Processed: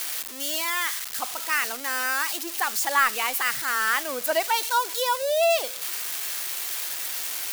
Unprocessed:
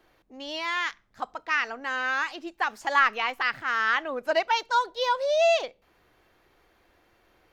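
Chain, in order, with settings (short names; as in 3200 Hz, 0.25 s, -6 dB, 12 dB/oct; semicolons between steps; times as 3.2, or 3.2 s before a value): switching spikes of -19.5 dBFS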